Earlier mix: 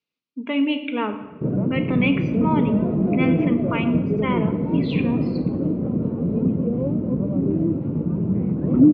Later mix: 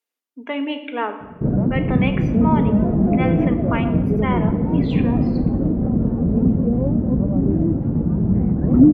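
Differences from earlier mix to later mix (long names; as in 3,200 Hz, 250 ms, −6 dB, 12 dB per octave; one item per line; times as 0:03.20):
speech: add high-pass filter 330 Hz 24 dB per octave
master: remove loudspeaker in its box 150–5,300 Hz, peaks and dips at 230 Hz −5 dB, 760 Hz −9 dB, 1,700 Hz −8 dB, 2,500 Hz +6 dB, 4,200 Hz +4 dB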